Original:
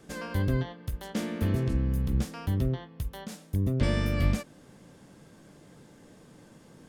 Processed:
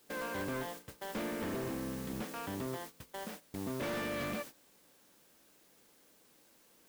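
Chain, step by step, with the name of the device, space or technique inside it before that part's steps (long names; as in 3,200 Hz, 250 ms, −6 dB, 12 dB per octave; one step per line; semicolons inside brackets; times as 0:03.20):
aircraft radio (band-pass filter 320–2,600 Hz; hard clipping −36 dBFS, distortion −8 dB; white noise bed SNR 10 dB; noise gate −47 dBFS, range −15 dB)
level +1.5 dB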